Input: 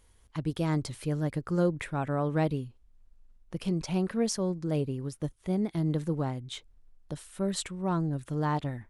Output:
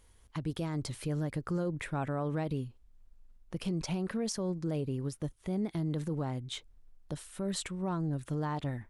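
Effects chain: limiter -25.5 dBFS, peak gain reduction 9.5 dB

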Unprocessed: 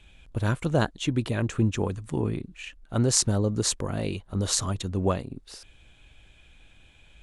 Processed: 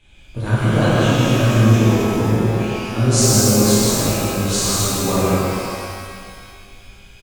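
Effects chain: loudspeakers at several distances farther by 37 m -10 dB, 55 m -4 dB, 92 m -10 dB; shimmer reverb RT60 2.1 s, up +12 st, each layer -8 dB, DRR -10.5 dB; gain -3 dB

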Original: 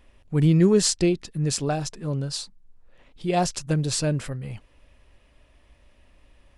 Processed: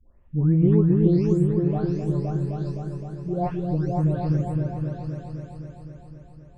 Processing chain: spectral delay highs late, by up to 0.548 s; EQ curve 100 Hz 0 dB, 1100 Hz -5 dB, 7000 Hz -30 dB; on a send: repeats that get brighter 0.259 s, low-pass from 400 Hz, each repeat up 2 oct, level 0 dB

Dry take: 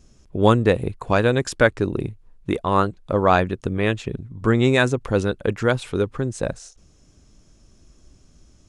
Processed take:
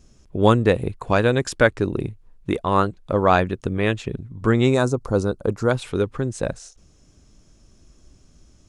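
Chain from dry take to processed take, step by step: 4.74–5.71 band shelf 2400 Hz -13.5 dB 1.3 oct

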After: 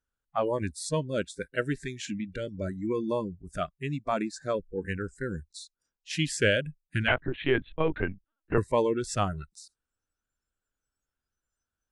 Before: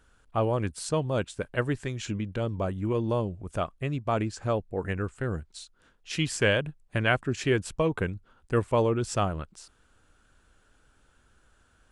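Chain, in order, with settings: spectral noise reduction 26 dB; 7.08–8.58 LPC vocoder at 8 kHz pitch kept

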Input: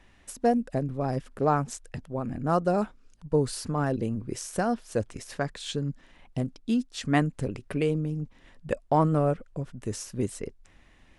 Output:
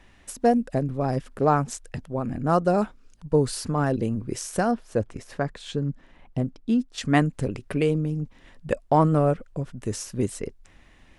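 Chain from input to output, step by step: 4.71–6.98 high shelf 2500 Hz -10 dB; gain +3.5 dB

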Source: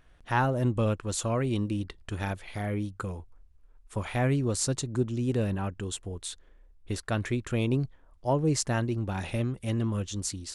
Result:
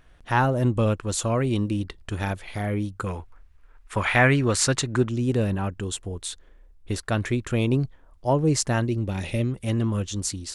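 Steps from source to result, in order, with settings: 3.06–5.09 bell 1800 Hz +12.5 dB 2.1 oct; 8.88–9.51 spectral gain 630–1800 Hz -7 dB; gain +4.5 dB

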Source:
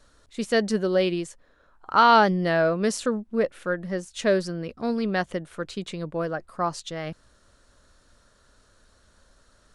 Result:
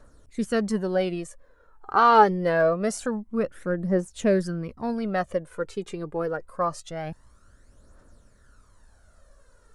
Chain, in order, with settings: bell 3700 Hz -10.5 dB 1.5 oct; phaser 0.25 Hz, delay 2.6 ms, feedback 56%

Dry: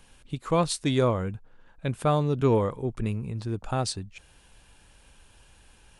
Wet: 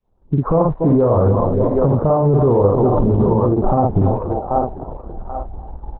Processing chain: opening faded in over 0.97 s; on a send: feedback echo 0.288 s, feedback 43%, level -17 dB; 0.69–1.31 on the sum: dynamic EQ 200 Hz, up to -6 dB, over -36 dBFS, Q 0.74; spectral noise reduction 13 dB; steep low-pass 1000 Hz 36 dB/oct; 2.03–3.79 bell 320 Hz -> 92 Hz -6 dB 1.2 oct; doubler 50 ms -4 dB; thinning echo 0.784 s, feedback 33%, high-pass 530 Hz, level -12 dB; compressor 12:1, threshold -31 dBFS, peak gain reduction 13.5 dB; maximiser +33.5 dB; gain -6 dB; Opus 6 kbps 48000 Hz

